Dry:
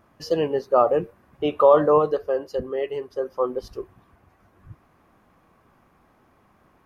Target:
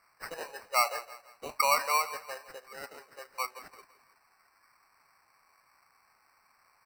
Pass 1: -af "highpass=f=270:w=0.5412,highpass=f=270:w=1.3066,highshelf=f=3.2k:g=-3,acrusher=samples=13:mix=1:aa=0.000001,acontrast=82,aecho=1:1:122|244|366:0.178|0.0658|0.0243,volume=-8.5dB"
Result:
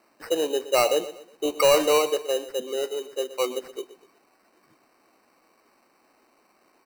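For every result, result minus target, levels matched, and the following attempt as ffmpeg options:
250 Hz band +17.0 dB; echo 45 ms early
-af "highpass=f=930:w=0.5412,highpass=f=930:w=1.3066,highshelf=f=3.2k:g=-3,acrusher=samples=13:mix=1:aa=0.000001,acontrast=82,aecho=1:1:122|244|366:0.178|0.0658|0.0243,volume=-8.5dB"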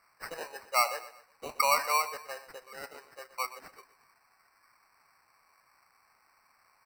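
echo 45 ms early
-af "highpass=f=930:w=0.5412,highpass=f=930:w=1.3066,highshelf=f=3.2k:g=-3,acrusher=samples=13:mix=1:aa=0.000001,acontrast=82,aecho=1:1:167|334|501:0.178|0.0658|0.0243,volume=-8.5dB"

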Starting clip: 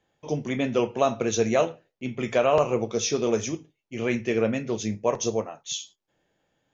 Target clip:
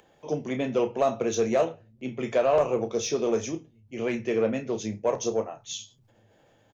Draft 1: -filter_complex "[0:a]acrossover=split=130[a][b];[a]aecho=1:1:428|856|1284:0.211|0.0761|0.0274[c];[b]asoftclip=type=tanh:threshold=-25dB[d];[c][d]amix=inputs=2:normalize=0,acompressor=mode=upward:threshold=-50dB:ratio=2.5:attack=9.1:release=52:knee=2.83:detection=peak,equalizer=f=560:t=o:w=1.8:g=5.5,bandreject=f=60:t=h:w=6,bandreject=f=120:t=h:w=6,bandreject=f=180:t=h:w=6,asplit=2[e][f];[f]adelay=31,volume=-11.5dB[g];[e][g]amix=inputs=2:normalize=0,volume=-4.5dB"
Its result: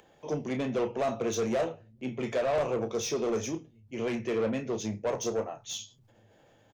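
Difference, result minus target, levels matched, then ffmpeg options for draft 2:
soft clip: distortion +11 dB
-filter_complex "[0:a]acrossover=split=130[a][b];[a]aecho=1:1:428|856|1284:0.211|0.0761|0.0274[c];[b]asoftclip=type=tanh:threshold=-14.5dB[d];[c][d]amix=inputs=2:normalize=0,acompressor=mode=upward:threshold=-50dB:ratio=2.5:attack=9.1:release=52:knee=2.83:detection=peak,equalizer=f=560:t=o:w=1.8:g=5.5,bandreject=f=60:t=h:w=6,bandreject=f=120:t=h:w=6,bandreject=f=180:t=h:w=6,asplit=2[e][f];[f]adelay=31,volume=-11.5dB[g];[e][g]amix=inputs=2:normalize=0,volume=-4.5dB"

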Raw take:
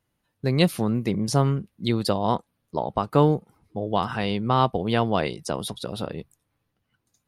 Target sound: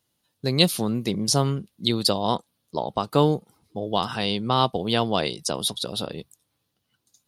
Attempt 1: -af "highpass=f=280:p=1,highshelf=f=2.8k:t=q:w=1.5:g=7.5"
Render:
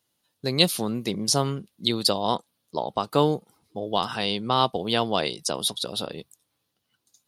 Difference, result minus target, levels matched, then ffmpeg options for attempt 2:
125 Hz band -3.5 dB
-af "highpass=f=120:p=1,highshelf=f=2.8k:t=q:w=1.5:g=7.5"

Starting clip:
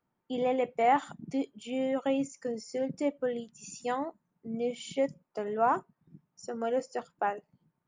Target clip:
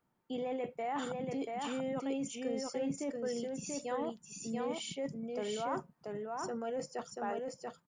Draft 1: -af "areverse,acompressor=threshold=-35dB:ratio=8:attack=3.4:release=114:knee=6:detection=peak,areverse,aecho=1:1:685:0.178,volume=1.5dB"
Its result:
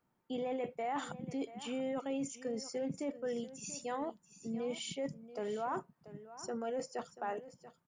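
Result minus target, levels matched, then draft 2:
echo-to-direct -12 dB
-af "areverse,acompressor=threshold=-35dB:ratio=8:attack=3.4:release=114:knee=6:detection=peak,areverse,aecho=1:1:685:0.708,volume=1.5dB"

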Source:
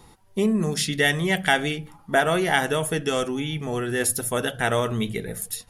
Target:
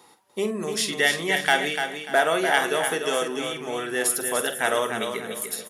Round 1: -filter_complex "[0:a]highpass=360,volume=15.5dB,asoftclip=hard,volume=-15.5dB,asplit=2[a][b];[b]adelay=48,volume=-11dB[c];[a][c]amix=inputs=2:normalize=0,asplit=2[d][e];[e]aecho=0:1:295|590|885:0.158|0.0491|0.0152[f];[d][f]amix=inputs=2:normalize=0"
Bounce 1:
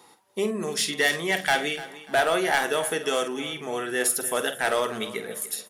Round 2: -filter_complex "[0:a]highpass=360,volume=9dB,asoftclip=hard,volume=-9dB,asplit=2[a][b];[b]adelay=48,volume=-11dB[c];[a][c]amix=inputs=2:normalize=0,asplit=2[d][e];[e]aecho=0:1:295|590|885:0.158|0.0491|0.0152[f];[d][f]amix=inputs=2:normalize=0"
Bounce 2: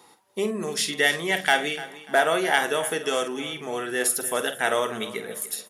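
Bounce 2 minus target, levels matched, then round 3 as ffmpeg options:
echo-to-direct -9 dB
-filter_complex "[0:a]highpass=360,volume=9dB,asoftclip=hard,volume=-9dB,asplit=2[a][b];[b]adelay=48,volume=-11dB[c];[a][c]amix=inputs=2:normalize=0,asplit=2[d][e];[e]aecho=0:1:295|590|885|1180:0.447|0.138|0.0429|0.0133[f];[d][f]amix=inputs=2:normalize=0"

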